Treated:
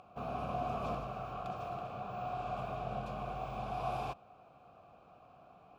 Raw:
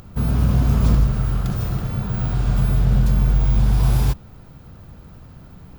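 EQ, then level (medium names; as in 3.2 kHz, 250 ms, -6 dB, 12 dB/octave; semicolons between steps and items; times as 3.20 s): vowel filter a; +3.5 dB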